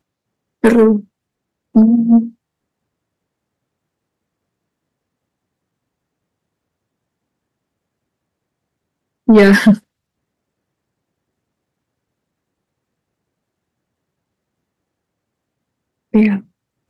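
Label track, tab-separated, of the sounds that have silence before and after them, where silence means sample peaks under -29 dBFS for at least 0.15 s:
0.640000	1.010000	sound
1.750000	2.290000	sound
9.280000	9.780000	sound
16.140000	16.400000	sound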